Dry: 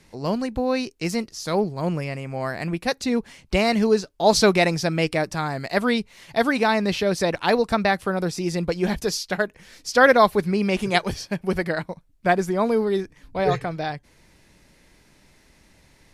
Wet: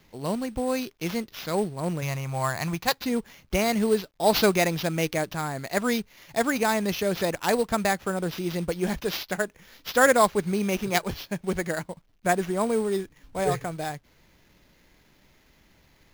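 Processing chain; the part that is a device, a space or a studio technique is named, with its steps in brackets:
0:02.02–0:03.01: octave-band graphic EQ 125/250/500/1,000/4,000 Hz +8/−5/−3/+10/+8 dB
early companding sampler (sample-rate reduction 8,700 Hz, jitter 0%; log-companded quantiser 6 bits)
level −4 dB

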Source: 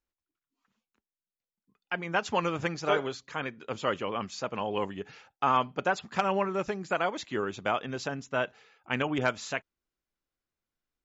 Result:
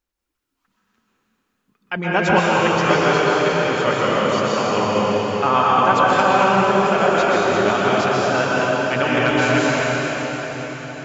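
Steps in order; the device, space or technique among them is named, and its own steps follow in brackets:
cathedral (convolution reverb RT60 5.3 s, pre-delay 117 ms, DRR −7.5 dB)
0:01.96–0:02.39: low-shelf EQ 390 Hz +9.5 dB
level +6 dB

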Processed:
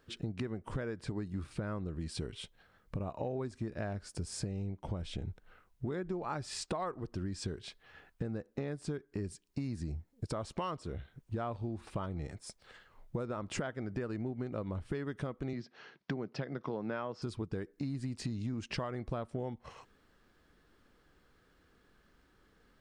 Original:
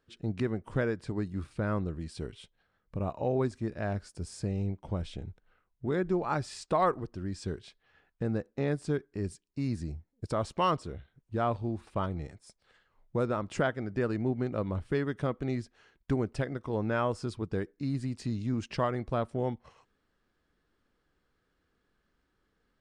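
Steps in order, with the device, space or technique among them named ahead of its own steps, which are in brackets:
0:15.53–0:17.22: elliptic band-pass filter 140–5,300 Hz
serial compression, peaks first (downward compressor 6 to 1, threshold −37 dBFS, peak gain reduction 14.5 dB; downward compressor 1.5 to 1, threshold −52 dBFS, peak gain reduction 7 dB)
level +8.5 dB

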